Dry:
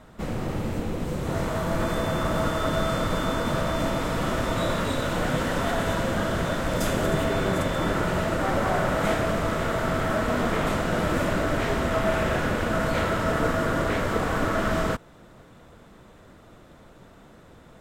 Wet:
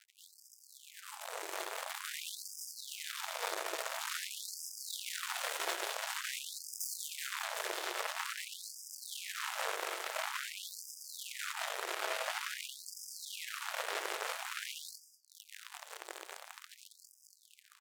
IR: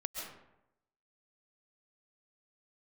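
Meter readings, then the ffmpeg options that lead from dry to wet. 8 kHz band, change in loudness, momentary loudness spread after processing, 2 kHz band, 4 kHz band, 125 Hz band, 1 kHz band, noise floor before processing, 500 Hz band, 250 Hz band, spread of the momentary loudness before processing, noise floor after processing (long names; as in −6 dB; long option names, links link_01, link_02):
−1.5 dB, −14.0 dB, 14 LU, −11.0 dB, −5.5 dB, below −40 dB, −14.5 dB, −51 dBFS, −21.0 dB, −35.0 dB, 3 LU, −64 dBFS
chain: -filter_complex "[0:a]acompressor=threshold=-46dB:ratio=2.5,alimiter=level_in=16dB:limit=-24dB:level=0:latency=1:release=69,volume=-16dB,highshelf=frequency=4100:gain=10,flanger=delay=19:depth=3.2:speed=0.51,asplit=2[link_01][link_02];[link_02]adelay=198.3,volume=-7dB,highshelf=frequency=4000:gain=-4.46[link_03];[link_01][link_03]amix=inputs=2:normalize=0,acrusher=bits=6:mix=0:aa=0.5,asplit=2[link_04][link_05];[1:a]atrim=start_sample=2205,asetrate=57330,aresample=44100,adelay=88[link_06];[link_05][link_06]afir=irnorm=-1:irlink=0,volume=-6.5dB[link_07];[link_04][link_07]amix=inputs=2:normalize=0,dynaudnorm=framelen=130:gausssize=21:maxgain=10.5dB,lowshelf=frequency=260:gain=-5.5,afftfilt=real='re*gte(b*sr/1024,310*pow(4900/310,0.5+0.5*sin(2*PI*0.48*pts/sr)))':imag='im*gte(b*sr/1024,310*pow(4900/310,0.5+0.5*sin(2*PI*0.48*pts/sr)))':win_size=1024:overlap=0.75,volume=7dB"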